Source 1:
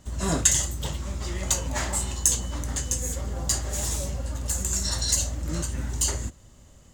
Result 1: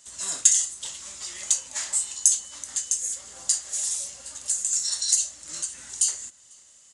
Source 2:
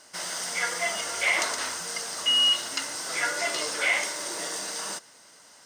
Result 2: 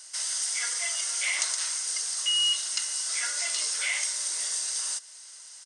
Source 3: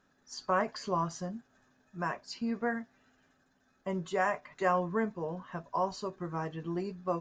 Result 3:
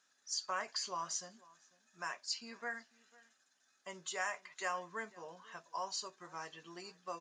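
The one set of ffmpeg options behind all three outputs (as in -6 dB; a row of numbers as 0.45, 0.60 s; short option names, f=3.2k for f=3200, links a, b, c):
-filter_complex "[0:a]aderivative,asplit=2[a][b];[b]acompressor=threshold=-43dB:ratio=6,volume=1dB[c];[a][c]amix=inputs=2:normalize=0,asplit=2[d][e];[e]adelay=495.6,volume=-22dB,highshelf=f=4k:g=-11.2[f];[d][f]amix=inputs=2:normalize=0,aresample=22050,aresample=44100,volume=2.5dB"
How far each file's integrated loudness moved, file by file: +2.0, -0.5, -7.5 LU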